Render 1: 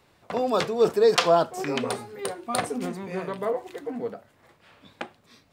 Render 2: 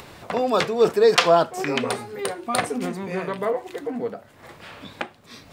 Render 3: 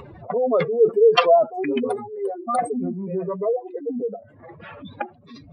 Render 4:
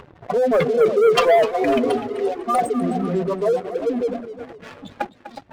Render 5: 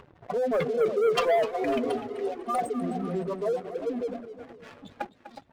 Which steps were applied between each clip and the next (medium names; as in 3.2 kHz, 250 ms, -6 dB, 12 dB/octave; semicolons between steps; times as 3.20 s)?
dynamic bell 2.1 kHz, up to +4 dB, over -42 dBFS, Q 1.1; in parallel at 0 dB: upward compressor, threshold -24 dBFS; on the sum: trim -3.5 dB
spectral contrast enhancement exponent 2.9; trim +2 dB
repeats whose band climbs or falls 182 ms, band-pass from 240 Hz, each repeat 1.4 oct, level -7 dB; waveshaping leveller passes 3; modulated delay 253 ms, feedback 38%, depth 140 cents, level -13 dB; trim -7.5 dB
delay 559 ms -23 dB; trim -8.5 dB